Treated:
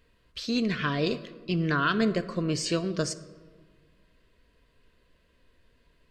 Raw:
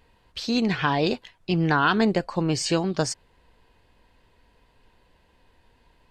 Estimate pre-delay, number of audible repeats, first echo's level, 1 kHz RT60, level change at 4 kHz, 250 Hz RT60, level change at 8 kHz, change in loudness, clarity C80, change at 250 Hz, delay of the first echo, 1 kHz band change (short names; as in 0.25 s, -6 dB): 3 ms, none, none, 1.5 s, -4.0 dB, 1.9 s, -4.0 dB, -4.5 dB, 16.5 dB, -4.0 dB, none, -7.0 dB